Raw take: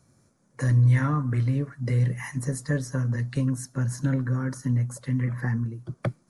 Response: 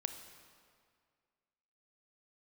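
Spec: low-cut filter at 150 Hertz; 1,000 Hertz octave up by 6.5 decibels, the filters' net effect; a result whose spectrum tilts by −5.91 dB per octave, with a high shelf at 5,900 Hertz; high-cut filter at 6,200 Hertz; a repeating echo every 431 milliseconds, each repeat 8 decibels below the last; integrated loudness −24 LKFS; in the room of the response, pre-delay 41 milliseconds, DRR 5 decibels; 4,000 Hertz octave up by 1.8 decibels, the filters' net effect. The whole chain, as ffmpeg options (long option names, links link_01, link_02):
-filter_complex "[0:a]highpass=150,lowpass=6200,equalizer=frequency=1000:width_type=o:gain=8,equalizer=frequency=4000:width_type=o:gain=4.5,highshelf=frequency=5900:gain=-3,aecho=1:1:431|862|1293|1724|2155:0.398|0.159|0.0637|0.0255|0.0102,asplit=2[link_01][link_02];[1:a]atrim=start_sample=2205,adelay=41[link_03];[link_02][link_03]afir=irnorm=-1:irlink=0,volume=-4.5dB[link_04];[link_01][link_04]amix=inputs=2:normalize=0,volume=2.5dB"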